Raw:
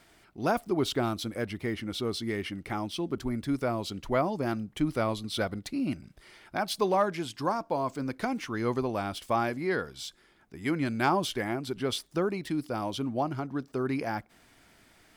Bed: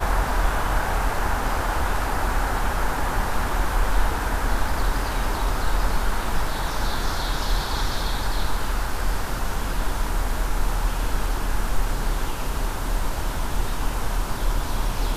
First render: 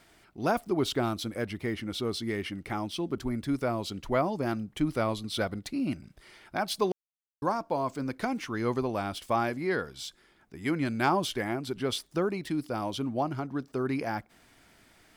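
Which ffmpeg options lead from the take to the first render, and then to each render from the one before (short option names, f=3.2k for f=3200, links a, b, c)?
-filter_complex "[0:a]asplit=3[a][b][c];[a]atrim=end=6.92,asetpts=PTS-STARTPTS,afade=t=out:st=6.916:d=0.004:c=hsin[d];[b]atrim=start=6.92:end=7.42,asetpts=PTS-STARTPTS,volume=0[e];[c]atrim=start=7.42,asetpts=PTS-STARTPTS,afade=t=in:d=0.004:c=hsin[f];[d][e][f]concat=n=3:v=0:a=1"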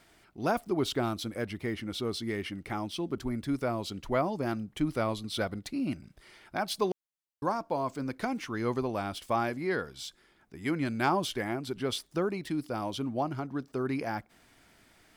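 -af "volume=-1.5dB"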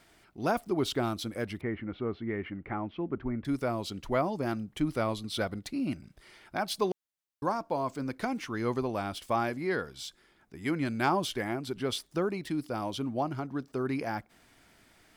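-filter_complex "[0:a]asettb=1/sr,asplit=3[a][b][c];[a]atrim=end=1.614[d];[b]atrim=start=1.61:end=3.45,asetpts=PTS-STARTPTS,afade=t=in:d=0.004:c=qsin,afade=t=out:st=1.836:d=0.004:c=qsin,lowpass=f=2.2k:w=0.5412,lowpass=f=2.2k:w=1.3066[e];[c]atrim=start=3.446[f];[d][e]acrossfade=d=0.004:c1=hsin:c2=qsin[g];[g][f]acrossfade=d=0.004:c1=qsin:c2=hsin"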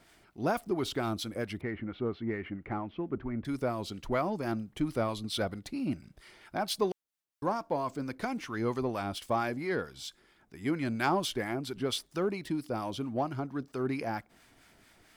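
-filter_complex "[0:a]acrossover=split=930[a][b];[a]aeval=exprs='val(0)*(1-0.5/2+0.5/2*cos(2*PI*4.4*n/s))':c=same[c];[b]aeval=exprs='val(0)*(1-0.5/2-0.5/2*cos(2*PI*4.4*n/s))':c=same[d];[c][d]amix=inputs=2:normalize=0,asplit=2[e][f];[f]asoftclip=type=tanh:threshold=-34.5dB,volume=-10dB[g];[e][g]amix=inputs=2:normalize=0"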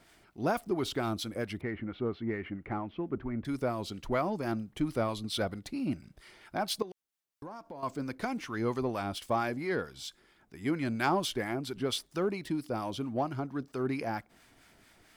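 -filter_complex "[0:a]asettb=1/sr,asplit=3[a][b][c];[a]atrim=end=6.824[d];[b]atrim=start=6.82:end=7.83,asetpts=PTS-STARTPTS,afade=t=in:d=0.004:c=qsin,afade=t=out:st=1.006:d=0.004:c=qsin,acompressor=threshold=-43dB:ratio=4:attack=3.2:release=140:knee=1:detection=peak[e];[c]atrim=start=7.826[f];[d][e]acrossfade=d=0.004:c1=hsin:c2=qsin[g];[g][f]acrossfade=d=0.004:c1=qsin:c2=hsin"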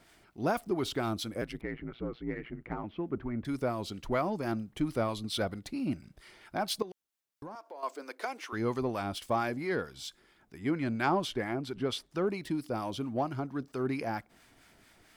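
-filter_complex "[0:a]asettb=1/sr,asplit=3[a][b][c];[a]atrim=end=1.414[d];[b]atrim=start=1.41:end=2.84,asetpts=PTS-STARTPTS,afade=t=in:d=0.004:c=qsin,afade=t=out:st=1.426:d=0.004:c=qsin,aeval=exprs='val(0)*sin(2*PI*59*n/s)':c=same[e];[c]atrim=start=2.836[f];[d][e]acrossfade=d=0.004:c1=hsin:c2=qsin[g];[g][f]acrossfade=d=0.004:c1=qsin:c2=hsin,asettb=1/sr,asplit=3[h][i][j];[h]atrim=end=7.554[k];[i]atrim=start=7.55:end=8.53,asetpts=PTS-STARTPTS,afade=t=in:d=0.004:c=qsin,afade=t=out:st=0.976:d=0.004:c=qsin,highpass=f=390:w=0.5412,highpass=f=390:w=1.3066[l];[j]atrim=start=8.526[m];[k][l]acrossfade=d=0.004:c1=hsin:c2=qsin[n];[n][m]acrossfade=d=0.004:c1=qsin:c2=hsin,asettb=1/sr,asplit=3[o][p][q];[o]atrim=end=10.584[r];[p]atrim=start=10.58:end=12.27,asetpts=PTS-STARTPTS,afade=t=in:d=0.004:c=qsin,afade=t=out:st=1.686:d=0.004:c=qsin,aemphasis=mode=reproduction:type=cd[s];[q]atrim=start=12.266[t];[r][s]acrossfade=d=0.004:c1=hsin:c2=qsin[u];[u][t]acrossfade=d=0.004:c1=qsin:c2=hsin"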